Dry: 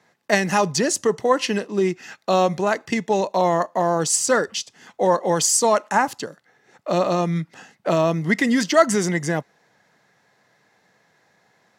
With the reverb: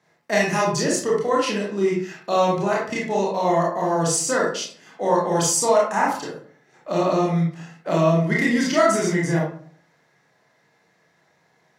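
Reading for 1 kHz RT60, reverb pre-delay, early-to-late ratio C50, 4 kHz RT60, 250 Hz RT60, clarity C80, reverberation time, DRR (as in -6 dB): 0.50 s, 24 ms, 2.0 dB, 0.30 s, 0.65 s, 7.5 dB, 0.50 s, -4.5 dB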